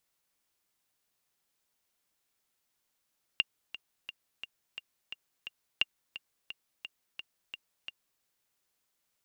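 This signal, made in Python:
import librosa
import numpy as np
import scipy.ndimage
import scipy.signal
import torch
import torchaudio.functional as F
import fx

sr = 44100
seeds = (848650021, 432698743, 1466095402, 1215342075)

y = fx.click_track(sr, bpm=174, beats=7, bars=2, hz=2800.0, accent_db=15.0, level_db=-12.0)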